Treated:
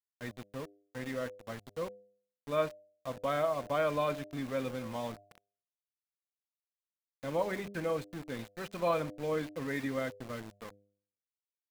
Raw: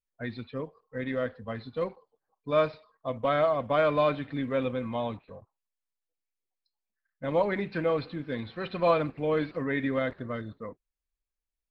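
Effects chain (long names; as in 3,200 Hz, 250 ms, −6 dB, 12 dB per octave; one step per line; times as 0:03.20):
centre clipping without the shift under −36.5 dBFS
hum removal 100.9 Hz, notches 7
level −6 dB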